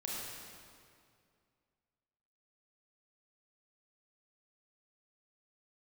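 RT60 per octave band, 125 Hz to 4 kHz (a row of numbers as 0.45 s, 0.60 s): 2.6 s, 2.5 s, 2.4 s, 2.2 s, 2.0 s, 1.8 s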